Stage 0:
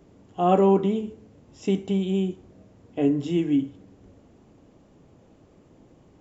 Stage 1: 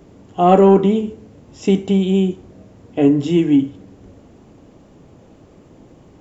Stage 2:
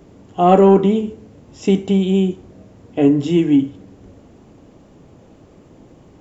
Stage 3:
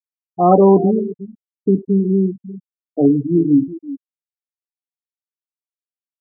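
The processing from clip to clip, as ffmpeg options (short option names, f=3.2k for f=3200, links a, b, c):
-af "acontrast=46,volume=3dB"
-af anull
-filter_complex "[0:a]asplit=2[a][b];[b]adelay=355.7,volume=-15dB,highshelf=f=4k:g=-8[c];[a][c]amix=inputs=2:normalize=0,afftfilt=real='re*gte(hypot(re,im),0.282)':imag='im*gte(hypot(re,im),0.282)':win_size=1024:overlap=0.75"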